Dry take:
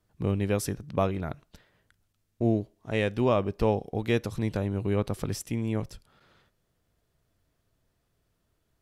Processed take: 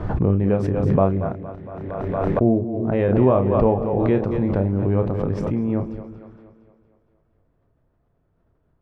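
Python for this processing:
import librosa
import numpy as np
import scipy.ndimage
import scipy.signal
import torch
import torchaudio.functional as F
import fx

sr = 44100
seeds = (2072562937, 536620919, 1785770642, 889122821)

y = scipy.signal.sosfilt(scipy.signal.butter(2, 1100.0, 'lowpass', fs=sr, output='sos'), x)
y = fx.doubler(y, sr, ms=31.0, db=-7.0)
y = fx.echo_split(y, sr, split_hz=390.0, low_ms=174, high_ms=231, feedback_pct=52, wet_db=-11)
y = fx.pre_swell(y, sr, db_per_s=25.0)
y = y * 10.0 ** (6.0 / 20.0)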